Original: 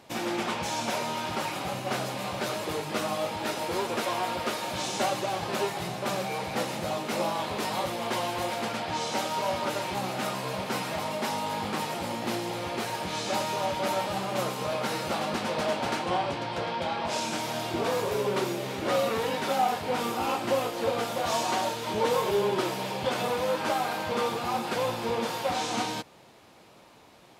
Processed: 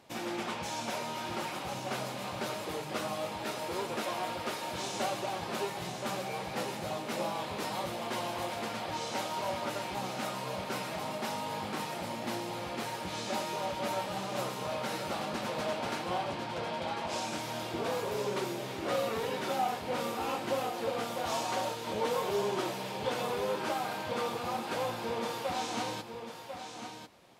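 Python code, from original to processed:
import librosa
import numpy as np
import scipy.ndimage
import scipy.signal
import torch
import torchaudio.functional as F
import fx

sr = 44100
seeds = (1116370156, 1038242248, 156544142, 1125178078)

y = x + 10.0 ** (-8.0 / 20.0) * np.pad(x, (int(1046 * sr / 1000.0), 0))[:len(x)]
y = y * librosa.db_to_amplitude(-6.0)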